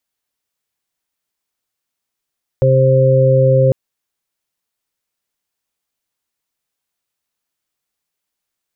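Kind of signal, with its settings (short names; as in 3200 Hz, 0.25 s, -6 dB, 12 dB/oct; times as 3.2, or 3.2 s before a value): steady additive tone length 1.10 s, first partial 132 Hz, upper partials -18/-9/0 dB, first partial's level -11 dB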